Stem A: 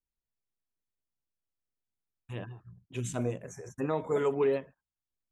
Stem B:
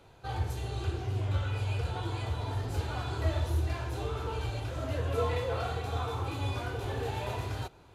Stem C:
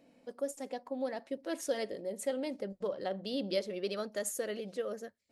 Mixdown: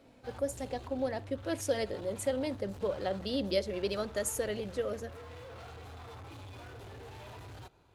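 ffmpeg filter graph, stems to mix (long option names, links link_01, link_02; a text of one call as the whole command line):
ffmpeg -i stem1.wav -i stem2.wav -i stem3.wav -filter_complex "[1:a]acompressor=threshold=-31dB:ratio=6,aeval=exprs='0.0106*(cos(1*acos(clip(val(0)/0.0106,-1,1)))-cos(1*PI/2))+0.000473*(cos(7*acos(clip(val(0)/0.0106,-1,1)))-cos(7*PI/2))':channel_layout=same,volume=-6.5dB[link_01];[2:a]volume=2.5dB[link_02];[link_01][link_02]amix=inputs=2:normalize=0" out.wav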